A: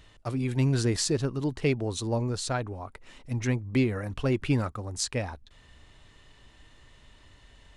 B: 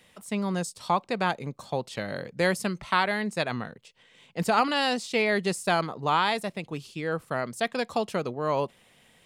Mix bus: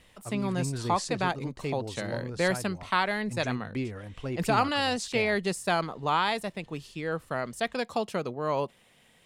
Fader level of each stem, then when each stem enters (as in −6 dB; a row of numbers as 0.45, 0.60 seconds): −8.0, −2.0 decibels; 0.00, 0.00 seconds